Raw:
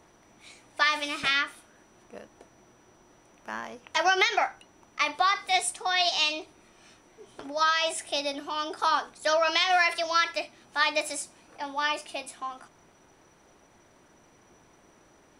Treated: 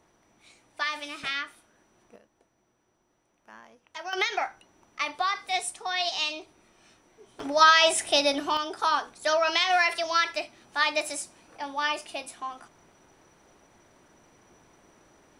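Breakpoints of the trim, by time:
-6 dB
from 2.16 s -13.5 dB
from 4.13 s -3.5 dB
from 7.40 s +7 dB
from 8.57 s 0 dB

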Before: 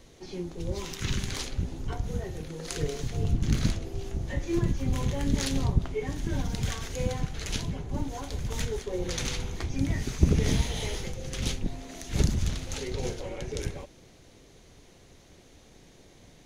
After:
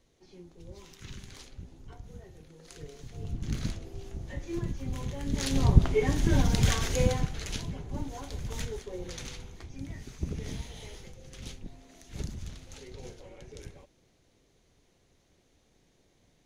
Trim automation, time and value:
2.91 s -14.5 dB
3.53 s -7 dB
5.23 s -7 dB
5.77 s +6 dB
6.95 s +6 dB
7.53 s -4 dB
8.57 s -4 dB
9.61 s -12.5 dB

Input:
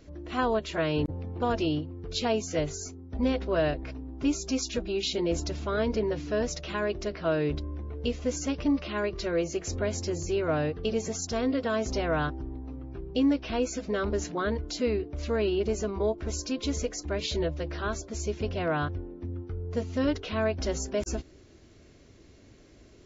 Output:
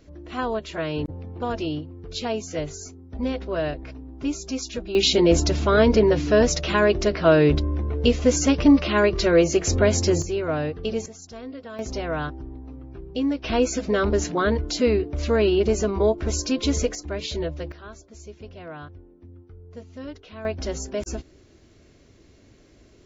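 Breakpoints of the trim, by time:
0 dB
from 4.95 s +11 dB
from 10.22 s +2 dB
from 11.06 s -9.5 dB
from 11.79 s 0 dB
from 13.44 s +7.5 dB
from 16.95 s +1 dB
from 17.72 s -10 dB
from 20.45 s +1 dB

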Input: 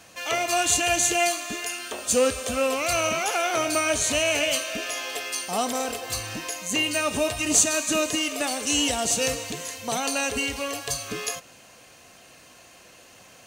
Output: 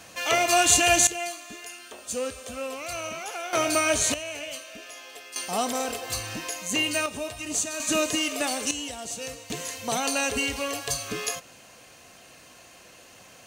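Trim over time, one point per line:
+3 dB
from 1.07 s -9.5 dB
from 3.53 s +0.5 dB
from 4.14 s -12 dB
from 5.36 s -1 dB
from 7.06 s -8.5 dB
from 7.80 s -0.5 dB
from 8.71 s -11 dB
from 9.50 s 0 dB

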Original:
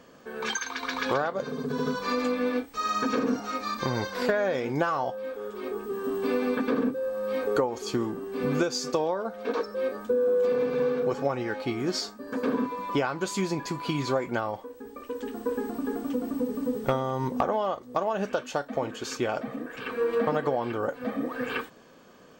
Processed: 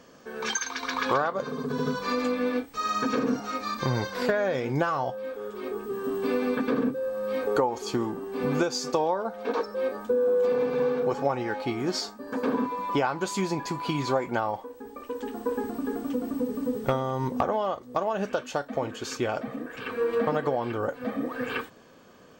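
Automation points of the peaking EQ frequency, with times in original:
peaking EQ +6 dB 0.47 oct
5.7 kHz
from 0.90 s 1.1 kHz
from 1.73 s 130 Hz
from 7.47 s 850 Hz
from 15.64 s 95 Hz

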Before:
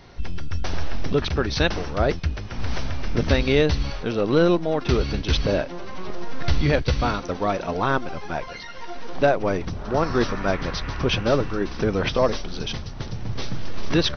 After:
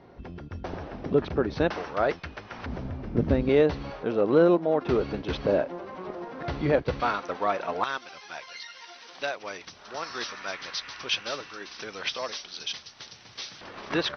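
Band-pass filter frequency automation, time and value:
band-pass filter, Q 0.62
410 Hz
from 1.70 s 1.1 kHz
from 2.66 s 240 Hz
from 3.49 s 570 Hz
from 7.00 s 1.3 kHz
from 7.84 s 4.9 kHz
from 13.61 s 1.2 kHz

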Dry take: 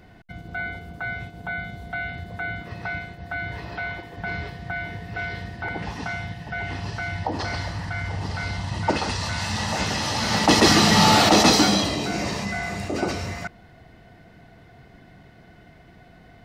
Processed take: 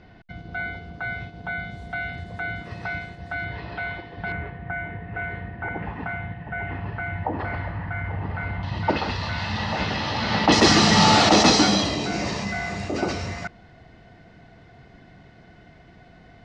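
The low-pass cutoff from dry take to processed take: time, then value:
low-pass 24 dB/octave
5.4 kHz
from 1.71 s 8.9 kHz
from 3.44 s 4.3 kHz
from 4.32 s 2.3 kHz
from 8.63 s 4.2 kHz
from 10.52 s 7.1 kHz

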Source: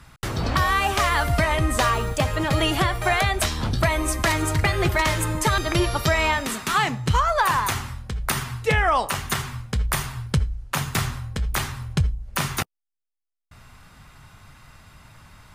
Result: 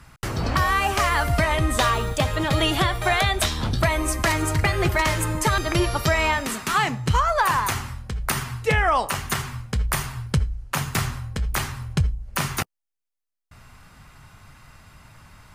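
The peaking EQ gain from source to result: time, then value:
peaking EQ 3.6 kHz 0.23 oct
1.20 s -5.5 dB
1.74 s +6 dB
3.46 s +6 dB
4.12 s -3.5 dB

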